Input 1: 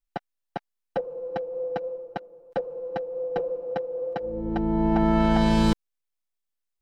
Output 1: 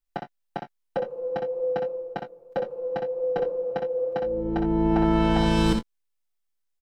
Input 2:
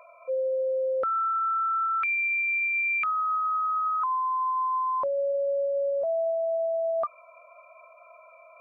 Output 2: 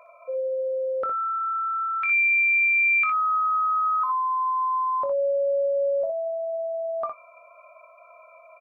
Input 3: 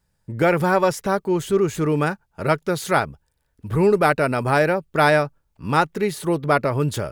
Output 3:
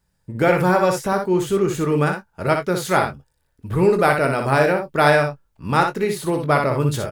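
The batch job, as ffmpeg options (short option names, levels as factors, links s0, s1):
-filter_complex "[0:a]asplit=2[s0][s1];[s1]adelay=22,volume=0.316[s2];[s0][s2]amix=inputs=2:normalize=0,aecho=1:1:61|75:0.501|0.133"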